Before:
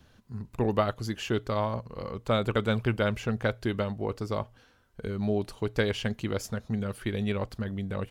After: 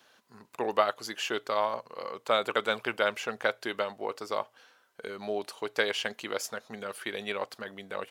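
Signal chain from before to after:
high-pass filter 580 Hz 12 dB per octave
level +3.5 dB

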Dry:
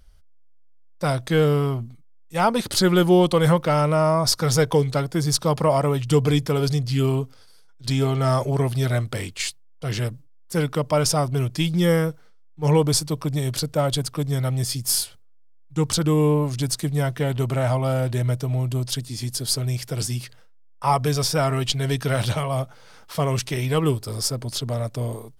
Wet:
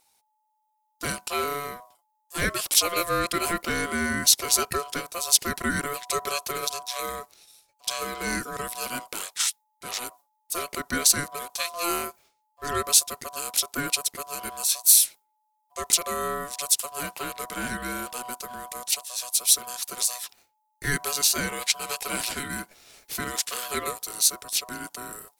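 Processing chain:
RIAA equalisation recording
ring modulation 860 Hz
level −3 dB

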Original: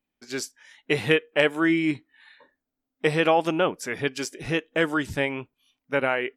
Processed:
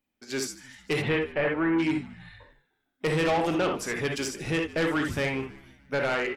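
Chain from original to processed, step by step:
reverb whose tail is shaped and stops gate 90 ms rising, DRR 4.5 dB
soft clipping −21 dBFS, distortion −9 dB
0:01.01–0:01.78: low-pass filter 3,600 Hz → 1,800 Hz 24 dB per octave
echo with shifted repeats 152 ms, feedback 54%, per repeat −70 Hz, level −19 dB

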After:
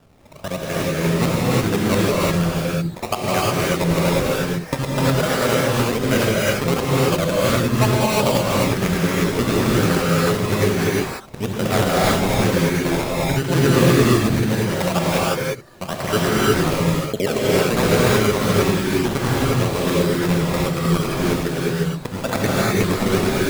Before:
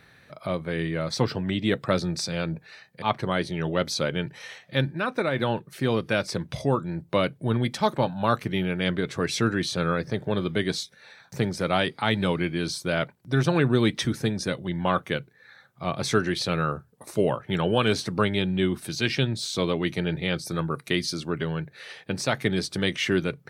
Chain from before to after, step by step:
reversed piece by piece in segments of 63 ms
sample-and-hold swept by an LFO 20×, swing 100% 1.1 Hz
reverb whose tail is shaped and stops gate 380 ms rising, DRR −6 dB
level +1 dB

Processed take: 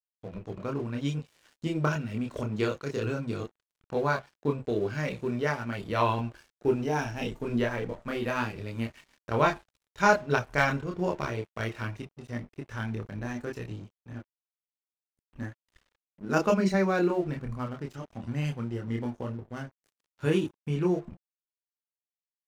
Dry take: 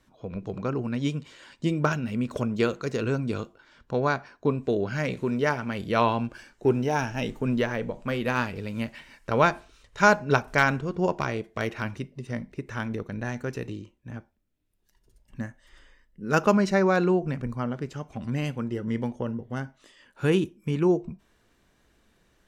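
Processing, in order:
multi-voice chorus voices 6, 0.53 Hz, delay 27 ms, depth 1.8 ms
dead-zone distortion −50.5 dBFS

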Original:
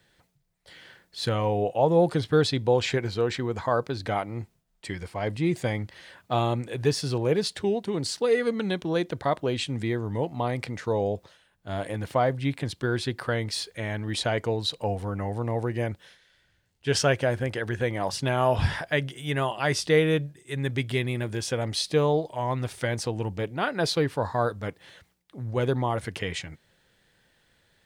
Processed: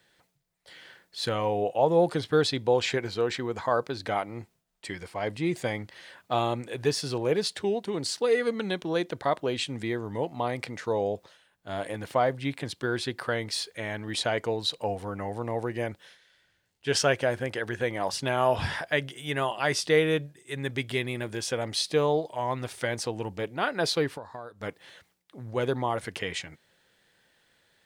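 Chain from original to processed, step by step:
low-shelf EQ 150 Hz −12 dB
0:24.08–0:24.61: downward compressor 10 to 1, threshold −37 dBFS, peak gain reduction 16.5 dB

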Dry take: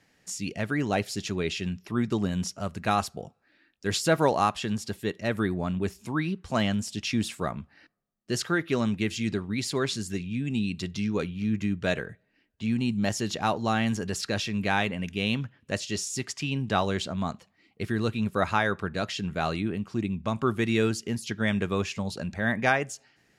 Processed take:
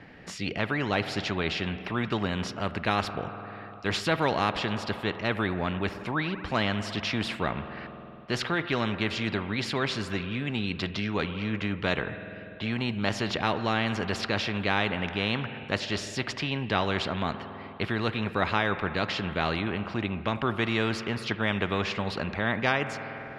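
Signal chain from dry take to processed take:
high-frequency loss of the air 400 metres
spring reverb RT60 2.5 s, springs 49 ms, chirp 35 ms, DRR 19 dB
every bin compressed towards the loudest bin 2 to 1
level +1.5 dB

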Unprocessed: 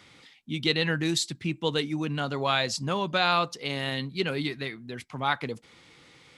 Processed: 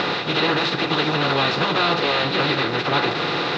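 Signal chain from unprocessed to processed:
compressor on every frequency bin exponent 0.2
inverse Chebyshev low-pass filter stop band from 8,500 Hz, stop band 40 dB
time stretch by phase vocoder 0.56×
level +2.5 dB

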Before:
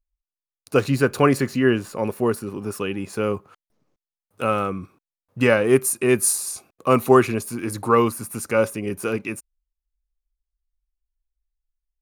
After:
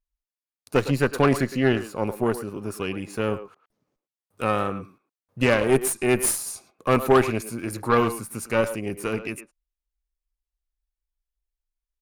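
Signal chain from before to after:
far-end echo of a speakerphone 110 ms, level −10 dB
pitch vibrato 1.3 Hz 35 cents
harmonic generator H 6 −19 dB, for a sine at −2 dBFS
level −3.5 dB

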